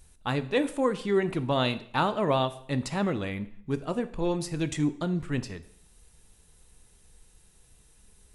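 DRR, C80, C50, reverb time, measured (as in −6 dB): 11.5 dB, 18.5 dB, 16.0 dB, 0.60 s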